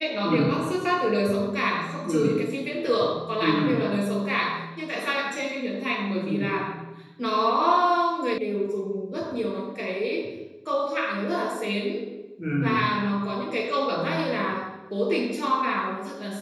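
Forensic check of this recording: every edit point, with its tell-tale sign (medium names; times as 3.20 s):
8.38 s: sound stops dead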